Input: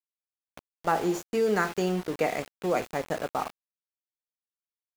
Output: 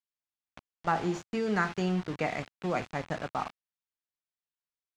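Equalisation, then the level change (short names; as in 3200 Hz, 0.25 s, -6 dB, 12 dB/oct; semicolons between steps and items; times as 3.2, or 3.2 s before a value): dynamic EQ 120 Hz, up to +5 dB, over -43 dBFS, Q 1.2; air absorption 100 m; bell 460 Hz -8 dB 1.1 oct; 0.0 dB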